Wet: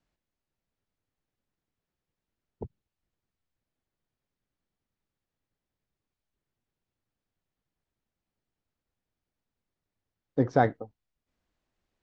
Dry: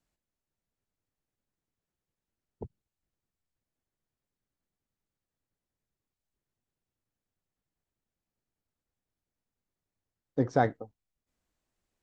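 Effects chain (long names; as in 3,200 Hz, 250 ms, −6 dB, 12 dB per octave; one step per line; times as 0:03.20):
low-pass filter 4,800 Hz
level +2.5 dB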